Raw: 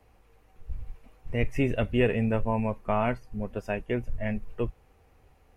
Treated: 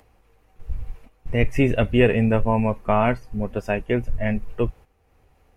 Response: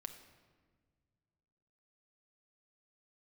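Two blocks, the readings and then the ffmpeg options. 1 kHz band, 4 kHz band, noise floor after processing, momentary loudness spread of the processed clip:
+7.0 dB, +7.0 dB, −61 dBFS, 17 LU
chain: -af "acompressor=mode=upward:threshold=-46dB:ratio=2.5,agate=range=-11dB:threshold=-47dB:ratio=16:detection=peak,volume=7dB"

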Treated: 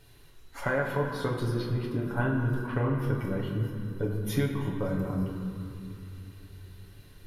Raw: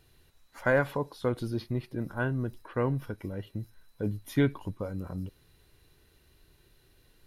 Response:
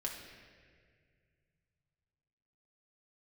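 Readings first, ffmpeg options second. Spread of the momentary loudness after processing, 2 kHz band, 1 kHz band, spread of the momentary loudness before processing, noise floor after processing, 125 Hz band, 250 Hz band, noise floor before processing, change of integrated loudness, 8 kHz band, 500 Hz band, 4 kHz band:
18 LU, −0.5 dB, +2.0 dB, 12 LU, −53 dBFS, +4.5 dB, +2.0 dB, −64 dBFS, +1.5 dB, +5.5 dB, −0.5 dB, +3.5 dB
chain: -filter_complex "[0:a]acompressor=threshold=-32dB:ratio=6[link_01];[1:a]atrim=start_sample=2205,asetrate=29106,aresample=44100[link_02];[link_01][link_02]afir=irnorm=-1:irlink=0,volume=4.5dB"

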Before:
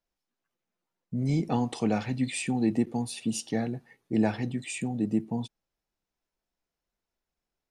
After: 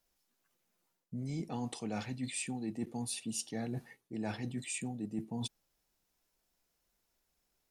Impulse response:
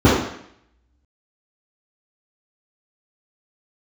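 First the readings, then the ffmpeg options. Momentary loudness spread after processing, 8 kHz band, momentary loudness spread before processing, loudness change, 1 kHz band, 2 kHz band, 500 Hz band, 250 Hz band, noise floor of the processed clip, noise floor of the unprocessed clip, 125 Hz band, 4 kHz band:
5 LU, −2.0 dB, 8 LU, −10.0 dB, −10.0 dB, −7.5 dB, −11.5 dB, −11.0 dB, −81 dBFS, below −85 dBFS, −9.5 dB, −4.0 dB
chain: -af "aemphasis=mode=production:type=cd,areverse,acompressor=threshold=-41dB:ratio=6,areverse,volume=4.5dB"

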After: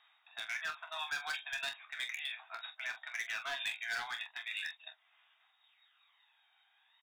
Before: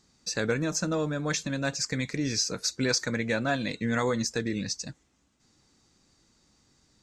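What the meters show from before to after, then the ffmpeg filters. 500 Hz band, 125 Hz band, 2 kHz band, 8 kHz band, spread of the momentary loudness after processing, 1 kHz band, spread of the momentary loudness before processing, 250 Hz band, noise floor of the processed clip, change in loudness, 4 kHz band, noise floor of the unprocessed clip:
−25.0 dB, below −40 dB, −4.0 dB, −20.5 dB, 7 LU, −8.5 dB, 4 LU, below −40 dB, −73 dBFS, −10.5 dB, −7.5 dB, −69 dBFS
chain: -filter_complex "[0:a]aeval=exprs='0.211*(cos(1*acos(clip(val(0)/0.211,-1,1)))-cos(1*PI/2))+0.0473*(cos(2*acos(clip(val(0)/0.211,-1,1)))-cos(2*PI/2))+0.00841*(cos(4*acos(clip(val(0)/0.211,-1,1)))-cos(4*PI/2))+0.00133*(cos(5*acos(clip(val(0)/0.211,-1,1)))-cos(5*PI/2))+0.0015*(cos(6*acos(clip(val(0)/0.211,-1,1)))-cos(6*PI/2))':channel_layout=same,tiltshelf=frequency=880:gain=-10,acrossover=split=950[link_01][link_02];[link_01]alimiter=level_in=5dB:limit=-24dB:level=0:latency=1:release=82,volume=-5dB[link_03];[link_02]acompressor=threshold=-34dB:ratio=12[link_04];[link_03][link_04]amix=inputs=2:normalize=0,aphaser=in_gain=1:out_gain=1:delay=1.3:decay=0.52:speed=0.38:type=sinusoidal,afftfilt=real='re*between(b*sr/4096,630,3800)':imag='im*between(b*sr/4096,630,3800)':win_size=4096:overlap=0.75,asoftclip=type=hard:threshold=-32dB,aecho=1:1:13|26|44:0.282|0.316|0.299,adynamicequalizer=threshold=0.00282:dfrequency=1700:dqfactor=0.7:tfrequency=1700:tqfactor=0.7:attack=5:release=100:ratio=0.375:range=3.5:mode=boostabove:tftype=highshelf,volume=-5dB"

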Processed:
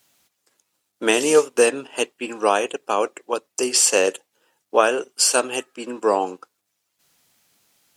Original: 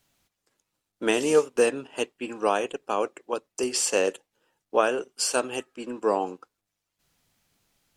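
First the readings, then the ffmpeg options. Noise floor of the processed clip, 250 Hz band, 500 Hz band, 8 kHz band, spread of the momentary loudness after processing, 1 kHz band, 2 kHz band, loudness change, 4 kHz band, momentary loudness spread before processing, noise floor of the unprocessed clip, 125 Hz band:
−75 dBFS, +3.5 dB, +5.0 dB, +9.5 dB, 11 LU, +6.0 dB, +6.5 dB, +6.0 dB, +8.0 dB, 11 LU, −83 dBFS, can't be measured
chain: -af "highpass=frequency=270:poles=1,highshelf=frequency=5000:gain=5,volume=6dB"

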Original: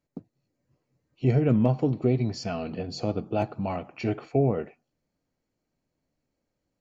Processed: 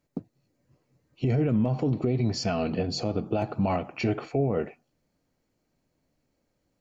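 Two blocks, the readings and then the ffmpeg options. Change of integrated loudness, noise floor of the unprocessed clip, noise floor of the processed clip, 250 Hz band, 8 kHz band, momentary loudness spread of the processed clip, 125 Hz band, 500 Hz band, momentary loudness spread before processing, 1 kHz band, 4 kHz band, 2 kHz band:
−0.5 dB, −82 dBFS, −76 dBFS, −0.5 dB, can't be measured, 7 LU, −1.5 dB, −1.0 dB, 11 LU, +1.0 dB, +5.0 dB, +2.5 dB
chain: -af "alimiter=limit=-22.5dB:level=0:latency=1:release=65,volume=5.5dB"

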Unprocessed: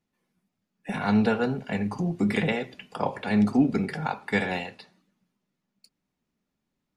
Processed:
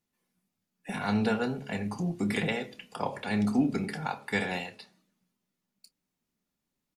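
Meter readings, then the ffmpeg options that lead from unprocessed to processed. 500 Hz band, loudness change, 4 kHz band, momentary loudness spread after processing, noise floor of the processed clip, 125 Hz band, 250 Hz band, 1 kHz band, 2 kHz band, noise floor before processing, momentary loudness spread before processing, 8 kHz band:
−4.5 dB, −4.5 dB, −1.0 dB, 9 LU, −85 dBFS, −4.5 dB, −5.0 dB, −4.0 dB, −3.0 dB, −82 dBFS, 11 LU, can't be measured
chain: -filter_complex "[0:a]aemphasis=mode=production:type=cd,asplit=2[link_01][link_02];[link_02]adelay=28,volume=-13.5dB[link_03];[link_01][link_03]amix=inputs=2:normalize=0,bandreject=frequency=70.71:width_type=h:width=4,bandreject=frequency=141.42:width_type=h:width=4,bandreject=frequency=212.13:width_type=h:width=4,bandreject=frequency=282.84:width_type=h:width=4,bandreject=frequency=353.55:width_type=h:width=4,bandreject=frequency=424.26:width_type=h:width=4,bandreject=frequency=494.97:width_type=h:width=4,bandreject=frequency=565.68:width_type=h:width=4,bandreject=frequency=636.39:width_type=h:width=4,volume=-4dB"

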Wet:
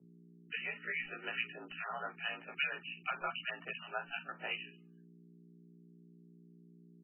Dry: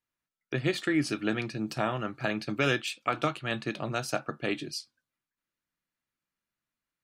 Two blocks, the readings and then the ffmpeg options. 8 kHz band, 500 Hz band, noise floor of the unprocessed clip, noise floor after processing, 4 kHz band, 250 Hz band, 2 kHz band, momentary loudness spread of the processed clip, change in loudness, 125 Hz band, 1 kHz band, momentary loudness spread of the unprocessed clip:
below −35 dB, −16.0 dB, below −85 dBFS, −60 dBFS, −7.0 dB, −23.0 dB, −4.5 dB, 6 LU, −8.5 dB, −21.5 dB, −8.5 dB, 6 LU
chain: -filter_complex "[0:a]highpass=760,agate=range=-33dB:threshold=-57dB:ratio=3:detection=peak,equalizer=frequency=3700:width=1.4:gain=13.5,acompressor=threshold=-31dB:ratio=2,acrossover=split=1600[link_01][link_02];[link_01]aeval=exprs='val(0)*(1-1/2+1/2*cos(2*PI*2.5*n/s))':channel_layout=same[link_03];[link_02]aeval=exprs='val(0)*(1-1/2-1/2*cos(2*PI*2.5*n/s))':channel_layout=same[link_04];[link_03][link_04]amix=inputs=2:normalize=0,afreqshift=-47,aeval=exprs='val(0)+0.000794*(sin(2*PI*60*n/s)+sin(2*PI*2*60*n/s)/2+sin(2*PI*3*60*n/s)/3+sin(2*PI*4*60*n/s)/4+sin(2*PI*5*60*n/s)/5)':channel_layout=same,afreqshift=110,aeval=exprs='0.112*(cos(1*acos(clip(val(0)/0.112,-1,1)))-cos(1*PI/2))+0.001*(cos(3*acos(clip(val(0)/0.112,-1,1)))-cos(3*PI/2))+0.00141*(cos(6*acos(clip(val(0)/0.112,-1,1)))-cos(6*PI/2))':channel_layout=same,asplit=2[link_05][link_06];[link_06]adelay=17,volume=-3dB[link_07];[link_05][link_07]amix=inputs=2:normalize=0" -ar 12000 -c:a libmp3lame -b:a 8k

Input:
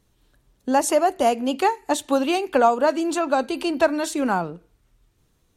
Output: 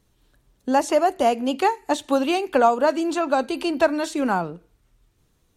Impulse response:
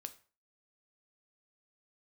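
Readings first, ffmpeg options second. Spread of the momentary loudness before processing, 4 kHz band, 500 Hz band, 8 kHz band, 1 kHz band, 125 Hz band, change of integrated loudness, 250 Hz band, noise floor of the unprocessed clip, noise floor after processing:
7 LU, −0.5 dB, 0.0 dB, −5.5 dB, 0.0 dB, can't be measured, 0.0 dB, 0.0 dB, −65 dBFS, −65 dBFS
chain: -filter_complex "[0:a]acrossover=split=5900[link_01][link_02];[link_02]acompressor=threshold=-39dB:ratio=4:attack=1:release=60[link_03];[link_01][link_03]amix=inputs=2:normalize=0"

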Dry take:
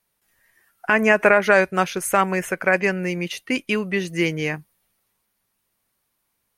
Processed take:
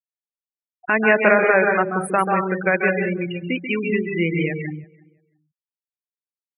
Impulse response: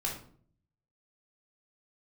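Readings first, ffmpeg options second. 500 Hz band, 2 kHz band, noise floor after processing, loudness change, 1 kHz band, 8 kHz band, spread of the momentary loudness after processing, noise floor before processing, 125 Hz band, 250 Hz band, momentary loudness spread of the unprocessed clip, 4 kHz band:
+1.0 dB, +0.5 dB, below −85 dBFS, +0.5 dB, +1.0 dB, −10.5 dB, 12 LU, −74 dBFS, +2.5 dB, +1.5 dB, 11 LU, −6.0 dB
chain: -filter_complex "[0:a]asplit=2[link_01][link_02];[1:a]atrim=start_sample=2205,afade=type=out:start_time=0.36:duration=0.01,atrim=end_sample=16317,adelay=137[link_03];[link_02][link_03]afir=irnorm=-1:irlink=0,volume=-5.5dB[link_04];[link_01][link_04]amix=inputs=2:normalize=0,afftfilt=real='re*gte(hypot(re,im),0.141)':imag='im*gte(hypot(re,im),0.141)':win_size=1024:overlap=0.75,asplit=2[link_05][link_06];[link_06]adelay=337,lowpass=frequency=1600:poles=1,volume=-24dB,asplit=2[link_07][link_08];[link_08]adelay=337,lowpass=frequency=1600:poles=1,volume=0.22[link_09];[link_05][link_07][link_09]amix=inputs=3:normalize=0,volume=-1dB"

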